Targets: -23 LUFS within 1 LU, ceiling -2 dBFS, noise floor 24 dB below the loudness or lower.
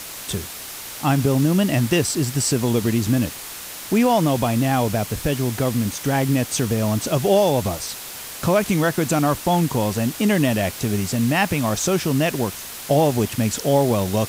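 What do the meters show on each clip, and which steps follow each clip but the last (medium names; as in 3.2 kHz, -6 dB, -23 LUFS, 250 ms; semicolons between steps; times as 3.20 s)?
noise floor -35 dBFS; noise floor target -45 dBFS; loudness -20.5 LUFS; peak level -5.5 dBFS; loudness target -23.0 LUFS
-> noise reduction 10 dB, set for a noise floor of -35 dBFS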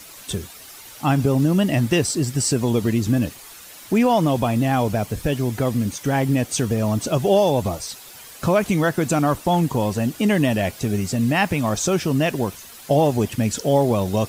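noise floor -42 dBFS; noise floor target -45 dBFS
-> noise reduction 6 dB, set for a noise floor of -42 dBFS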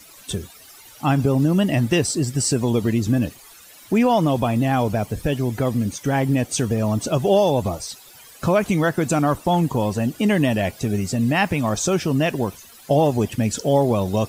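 noise floor -46 dBFS; loudness -21.0 LUFS; peak level -6.0 dBFS; loudness target -23.0 LUFS
-> trim -2 dB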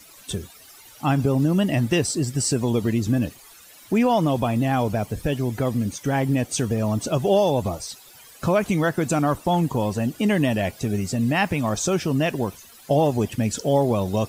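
loudness -23.0 LUFS; peak level -8.0 dBFS; noise floor -48 dBFS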